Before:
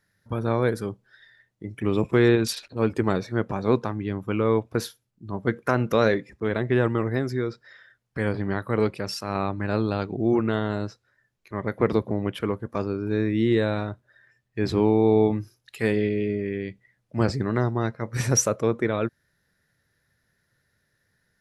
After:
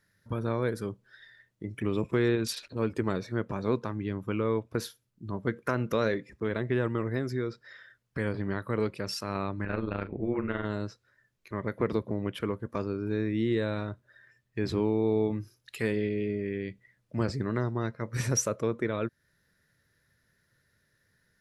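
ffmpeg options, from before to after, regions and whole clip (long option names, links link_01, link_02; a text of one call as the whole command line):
ffmpeg -i in.wav -filter_complex "[0:a]asettb=1/sr,asplit=3[link_01][link_02][link_03];[link_01]atrim=end=9.654[link_04];[link_02]atrim=start=9.65:end=10.65,asetpts=PTS-STARTPTS,afade=type=in:duration=0.004:curve=qsin,afade=type=out:start_time=0.996:duration=0.004:curve=qsin,lowpass=frequency=2200:width_type=q:width=2.2,tremolo=f=130:d=0.75,asplit=2[link_05][link_06];[link_06]adelay=40,volume=-13dB[link_07];[link_05][link_07]amix=inputs=2:normalize=0,atrim=end_sample=44100[link_08];[link_03]atrim=start=10.646[link_09];[link_04][link_08]acrossfade=duration=0.004:curve1=hsin:curve2=qsin[link_10];[link_10][link_09]acrossfade=duration=0.004:curve1=qsin:curve2=hsin,equalizer=frequency=770:width=5.8:gain=-7,acompressor=threshold=-35dB:ratio=1.5" out.wav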